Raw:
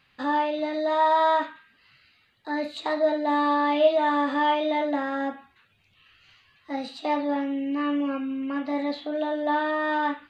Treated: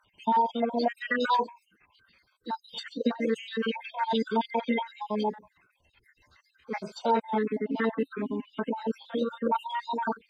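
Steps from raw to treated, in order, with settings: random holes in the spectrogram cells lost 63%; formant-preserving pitch shift -4.5 st; trim +1.5 dB

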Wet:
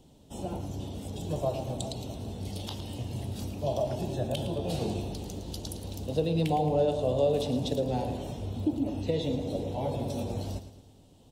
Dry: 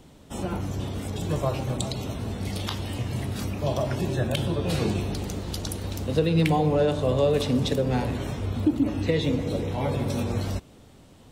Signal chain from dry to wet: high-order bell 1.6 kHz -10.5 dB 1.3 oct; feedback delay 111 ms, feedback 46%, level -11.5 dB; dynamic bell 670 Hz, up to +6 dB, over -40 dBFS, Q 2.3; trim -6.5 dB

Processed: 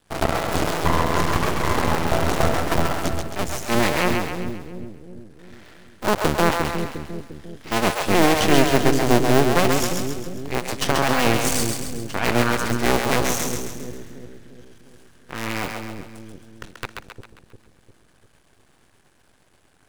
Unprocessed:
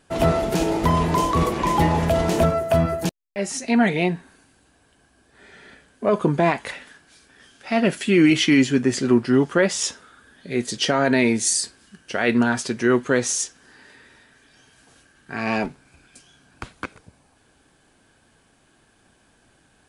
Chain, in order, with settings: cycle switcher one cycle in 2, muted; half-wave rectifier; two-band feedback delay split 450 Hz, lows 351 ms, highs 134 ms, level -4 dB; trim +3.5 dB

